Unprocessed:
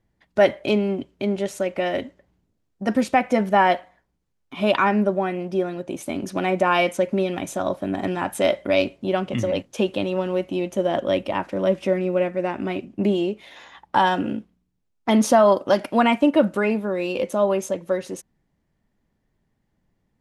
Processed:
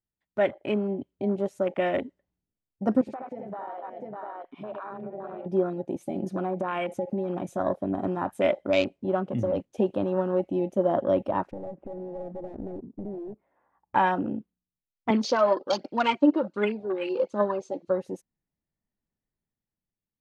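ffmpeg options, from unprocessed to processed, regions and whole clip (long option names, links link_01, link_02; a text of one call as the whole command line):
ffmpeg -i in.wav -filter_complex "[0:a]asettb=1/sr,asplit=3[link_01][link_02][link_03];[link_01]atrim=end=3.014[link_04];[link_02]atrim=start=3.01:end=5.46,asetpts=PTS-STARTPTS,afade=type=in:duration=0.004:curve=qsin,afade=type=out:start_time=2.446:duration=0.004:curve=qsin,bass=frequency=250:gain=-10,treble=frequency=4000:gain=-11,aecho=1:1:60|75|252|597|697:0.316|0.668|0.237|0.133|0.224,atrim=end_sample=108045,acompressor=threshold=-31dB:ratio=10:attack=3.2:release=140:knee=1:detection=peak[link_05];[link_03]atrim=start=5.456[link_06];[link_04][link_05]acrossfade=duration=0.004:curve1=hsin:curve2=qsin[link_07];[link_07][link_06]acrossfade=duration=0.004:curve1=qsin:curve2=hsin,asettb=1/sr,asplit=3[link_08][link_09][link_10];[link_08]atrim=end=5.974[link_11];[link_09]atrim=start=5.97:end=7.58,asetpts=PTS-STARTPTS,afade=type=in:duration=0.004:curve=qsin,afade=type=out:start_time=1.606:duration=0.004:curve=qsin,aecho=1:1:5.6:0.52,atrim=end_sample=71001,acompressor=threshold=-23dB:ratio=10:attack=3.2:release=140:knee=1:detection=peak[link_12];[link_10]atrim=start=7.576[link_13];[link_11][link_12]acrossfade=duration=0.004:curve1=hsin:curve2=qsin[link_14];[link_14][link_13]acrossfade=duration=0.004:curve1=qsin:curve2=hsin,asettb=1/sr,asplit=3[link_15][link_16][link_17];[link_15]atrim=end=11.514[link_18];[link_16]atrim=start=11.51:end=13.95,asetpts=PTS-STARTPTS,afade=type=in:duration=0.004:curve=qsin,afade=type=out:start_time=2.436:duration=0.004:curve=qsin,lowpass=frequency=1300:width=0.5412,lowpass=frequency=1300:width=1.3066,acompressor=threshold=-27dB:ratio=16:attack=3.2:release=140:knee=1:detection=peak,aeval=exprs='clip(val(0),-1,0.0158)':channel_layout=same[link_19];[link_17]atrim=start=13.946[link_20];[link_18][link_19]acrossfade=duration=0.004:curve1=hsin:curve2=qsin[link_21];[link_21][link_20]acrossfade=duration=0.004:curve1=qsin:curve2=hsin,asettb=1/sr,asplit=3[link_22][link_23][link_24];[link_22]atrim=end=15.104[link_25];[link_23]atrim=start=15.1:end=17.9,asetpts=PTS-STARTPTS,afade=type=in:duration=0.004:curve=qsin,afade=type=out:start_time=2.796:duration=0.004:curve=qsin,aphaser=in_gain=1:out_gain=1:delay=3.7:decay=0.59:speed=1.3:type=triangular,highpass=270,equalizer=frequency=670:width_type=q:width=4:gain=-9,equalizer=frequency=1800:width_type=q:width=4:gain=-5,equalizer=frequency=4400:width_type=q:width=4:gain=10,lowpass=frequency=6800:width=0.5412,lowpass=frequency=6800:width=1.3066[link_26];[link_24]atrim=start=17.896[link_27];[link_25][link_26]acrossfade=duration=0.004:curve1=hsin:curve2=qsin[link_28];[link_28][link_27]acrossfade=duration=0.004:curve1=qsin:curve2=hsin,afwtdn=0.0316,dynaudnorm=framelen=160:gausssize=11:maxgain=7dB,volume=-8dB" out.wav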